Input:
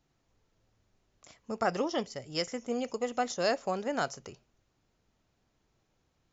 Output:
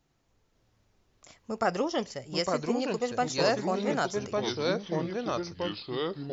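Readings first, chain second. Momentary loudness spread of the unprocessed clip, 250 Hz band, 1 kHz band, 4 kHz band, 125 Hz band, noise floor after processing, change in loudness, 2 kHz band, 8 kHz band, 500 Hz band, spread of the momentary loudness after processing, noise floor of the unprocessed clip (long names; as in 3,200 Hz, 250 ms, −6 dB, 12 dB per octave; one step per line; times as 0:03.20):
6 LU, +6.0 dB, +3.5 dB, +5.5 dB, +10.0 dB, −72 dBFS, +2.5 dB, +3.5 dB, can't be measured, +5.0 dB, 7 LU, −76 dBFS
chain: delay with pitch and tempo change per echo 551 ms, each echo −3 semitones, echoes 3
level +2 dB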